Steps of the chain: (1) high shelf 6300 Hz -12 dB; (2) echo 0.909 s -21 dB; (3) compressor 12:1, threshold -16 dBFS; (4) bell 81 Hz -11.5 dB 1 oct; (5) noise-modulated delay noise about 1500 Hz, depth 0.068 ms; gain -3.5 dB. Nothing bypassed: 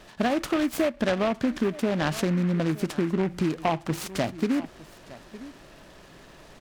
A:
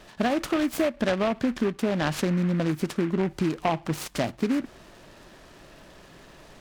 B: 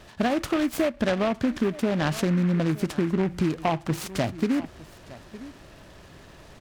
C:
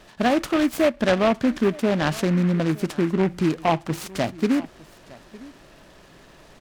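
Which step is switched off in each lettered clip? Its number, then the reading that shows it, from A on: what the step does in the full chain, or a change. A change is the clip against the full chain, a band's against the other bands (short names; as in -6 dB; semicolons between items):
2, momentary loudness spread change -13 LU; 4, 125 Hz band +2.0 dB; 3, mean gain reduction 2.0 dB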